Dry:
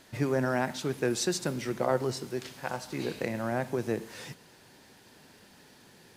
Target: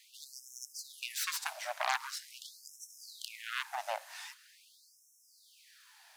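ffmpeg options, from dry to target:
ffmpeg -i in.wav -af "aeval=exprs='0.211*(cos(1*acos(clip(val(0)/0.211,-1,1)))-cos(1*PI/2))+0.0531*(cos(3*acos(clip(val(0)/0.211,-1,1)))-cos(3*PI/2))+0.0335*(cos(7*acos(clip(val(0)/0.211,-1,1)))-cos(7*PI/2))+0.0266*(cos(8*acos(clip(val(0)/0.211,-1,1)))-cos(8*PI/2))':channel_layout=same,acrusher=bits=11:mix=0:aa=0.000001,afftfilt=real='re*gte(b*sr/1024,550*pow(5400/550,0.5+0.5*sin(2*PI*0.44*pts/sr)))':imag='im*gte(b*sr/1024,550*pow(5400/550,0.5+0.5*sin(2*PI*0.44*pts/sr)))':win_size=1024:overlap=0.75" out.wav

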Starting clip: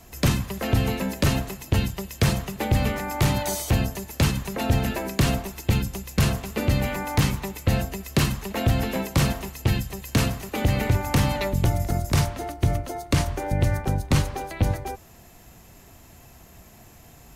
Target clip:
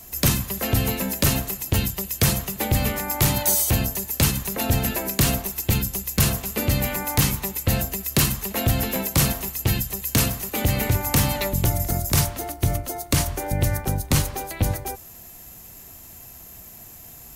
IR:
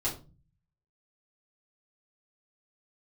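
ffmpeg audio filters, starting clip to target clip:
-af "aemphasis=mode=production:type=50fm"

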